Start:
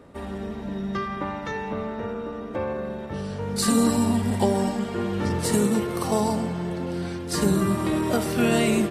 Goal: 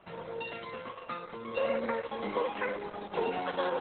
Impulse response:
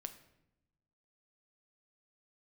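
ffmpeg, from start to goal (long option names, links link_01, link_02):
-af "asetrate=103194,aresample=44100,volume=-8.5dB" -ar 48000 -c:a libopus -b:a 8k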